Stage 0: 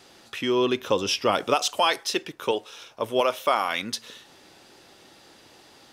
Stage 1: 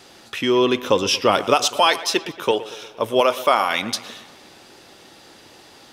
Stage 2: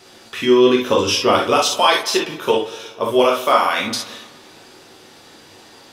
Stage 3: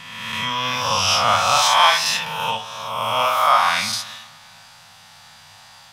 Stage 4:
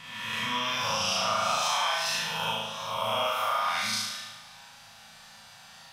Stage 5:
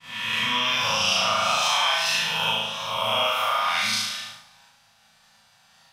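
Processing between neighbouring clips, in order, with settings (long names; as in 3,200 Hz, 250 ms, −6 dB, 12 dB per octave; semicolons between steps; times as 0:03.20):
delay with a low-pass on its return 116 ms, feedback 59%, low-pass 3,500 Hz, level −16 dB; level +5.5 dB
convolution reverb, pre-delay 3 ms, DRR −1.5 dB; level −1.5 dB
peak hold with a rise ahead of every peak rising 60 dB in 1.41 s; Chebyshev band-stop filter 150–830 Hz, order 2; level −2 dB
downward compressor 6 to 1, threshold −20 dBFS, peak gain reduction 10.5 dB; on a send: flutter between parallel walls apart 6.3 metres, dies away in 0.92 s; on the sum: level −8 dB
downward expander −42 dBFS; dynamic equaliser 2,800 Hz, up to +6 dB, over −46 dBFS, Q 1.5; level +3 dB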